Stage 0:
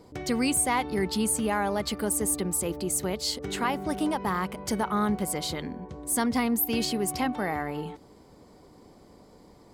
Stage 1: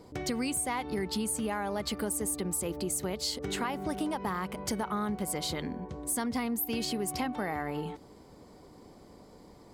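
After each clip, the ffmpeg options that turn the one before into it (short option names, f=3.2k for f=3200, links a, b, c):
-af "acompressor=threshold=-29dB:ratio=6"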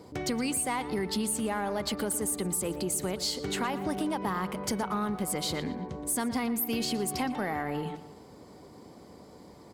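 -filter_complex "[0:a]highpass=72,asplit=2[a][b];[b]asoftclip=type=tanh:threshold=-33.5dB,volume=-8dB[c];[a][c]amix=inputs=2:normalize=0,asplit=2[d][e];[e]adelay=117,lowpass=f=4.6k:p=1,volume=-13.5dB,asplit=2[f][g];[g]adelay=117,lowpass=f=4.6k:p=1,volume=0.46,asplit=2[h][i];[i]adelay=117,lowpass=f=4.6k:p=1,volume=0.46,asplit=2[j][k];[k]adelay=117,lowpass=f=4.6k:p=1,volume=0.46[l];[d][f][h][j][l]amix=inputs=5:normalize=0"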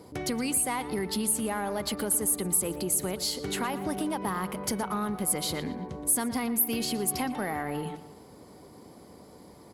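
-af "equalizer=f=11k:t=o:w=0.2:g=14.5"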